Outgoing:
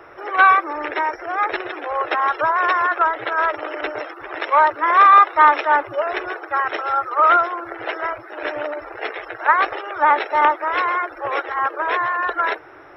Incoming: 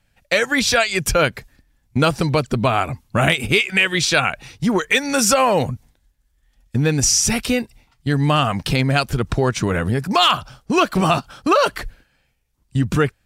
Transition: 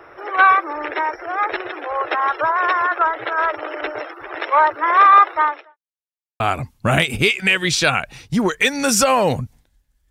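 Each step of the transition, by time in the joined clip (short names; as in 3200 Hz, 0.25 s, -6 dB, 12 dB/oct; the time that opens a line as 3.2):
outgoing
5.31–5.77 fade out quadratic
5.77–6.4 mute
6.4 switch to incoming from 2.7 s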